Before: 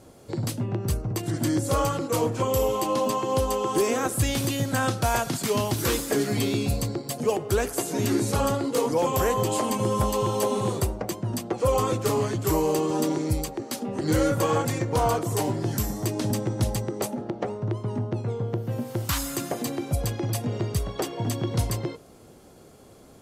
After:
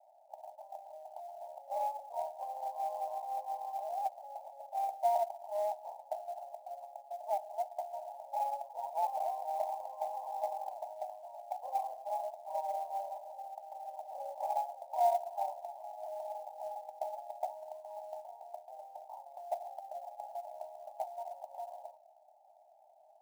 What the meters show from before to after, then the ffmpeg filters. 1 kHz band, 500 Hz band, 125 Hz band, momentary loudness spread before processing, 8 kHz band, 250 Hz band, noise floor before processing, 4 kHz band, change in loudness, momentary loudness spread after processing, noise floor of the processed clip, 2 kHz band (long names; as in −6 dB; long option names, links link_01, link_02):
−5.5 dB, −13.5 dB, below −40 dB, 6 LU, −29.0 dB, below −40 dB, −50 dBFS, below −25 dB, −13.5 dB, 13 LU, −63 dBFS, below −25 dB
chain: -af "asuperpass=centerf=740:order=12:qfactor=2.5,acrusher=bits=6:mode=log:mix=0:aa=0.000001,aeval=exprs='0.133*(cos(1*acos(clip(val(0)/0.133,-1,1)))-cos(1*PI/2))+0.0015*(cos(7*acos(clip(val(0)/0.133,-1,1)))-cos(7*PI/2))':channel_layout=same,volume=-1dB"